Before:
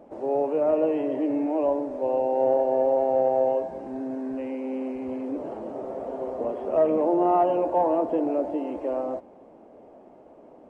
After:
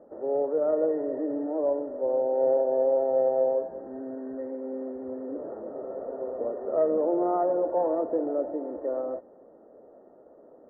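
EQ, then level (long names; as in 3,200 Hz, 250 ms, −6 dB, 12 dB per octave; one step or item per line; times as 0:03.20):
Chebyshev low-pass with heavy ripple 1,900 Hz, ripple 9 dB
0.0 dB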